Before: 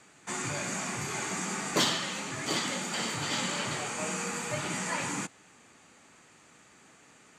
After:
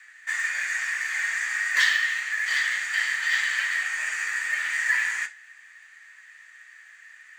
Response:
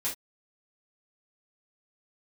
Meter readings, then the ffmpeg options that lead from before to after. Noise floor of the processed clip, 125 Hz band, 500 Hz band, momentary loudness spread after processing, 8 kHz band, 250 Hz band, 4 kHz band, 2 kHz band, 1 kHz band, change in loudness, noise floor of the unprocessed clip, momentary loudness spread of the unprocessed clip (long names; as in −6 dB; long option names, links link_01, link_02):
−51 dBFS, below −30 dB, below −20 dB, 6 LU, −2.0 dB, below −30 dB, +1.0 dB, +14.0 dB, −5.0 dB, +7.5 dB, −59 dBFS, 7 LU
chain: -filter_complex "[0:a]highpass=frequency=1800:width_type=q:width=14,acrusher=bits=7:mode=log:mix=0:aa=0.000001,asplit=2[link_01][link_02];[1:a]atrim=start_sample=2205,lowpass=7400[link_03];[link_02][link_03]afir=irnorm=-1:irlink=0,volume=-9dB[link_04];[link_01][link_04]amix=inputs=2:normalize=0,volume=-3.5dB"